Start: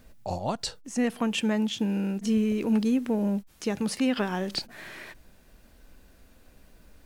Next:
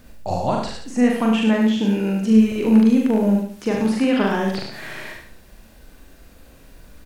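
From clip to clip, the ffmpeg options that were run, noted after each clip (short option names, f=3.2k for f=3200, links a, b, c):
-filter_complex "[0:a]asplit=2[a][b];[b]aecho=0:1:40.82|99.13:0.708|0.355[c];[a][c]amix=inputs=2:normalize=0,acrossover=split=2700[d][e];[e]acompressor=threshold=-45dB:ratio=4:attack=1:release=60[f];[d][f]amix=inputs=2:normalize=0,asplit=2[g][h];[h]aecho=0:1:73|146|219|292:0.501|0.165|0.0546|0.018[i];[g][i]amix=inputs=2:normalize=0,volume=6dB"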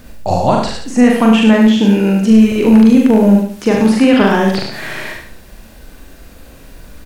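-af "apsyclip=11dB,volume=-2dB"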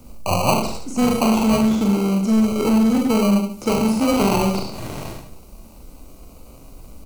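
-filter_complex "[0:a]acrossover=split=190|430|4400[a][b][c][d];[b]asoftclip=type=tanh:threshold=-19dB[e];[c]acrusher=samples=25:mix=1:aa=0.000001[f];[a][e][f][d]amix=inputs=4:normalize=0,volume=-4.5dB"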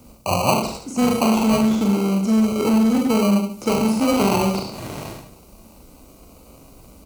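-af "highpass=f=84:p=1"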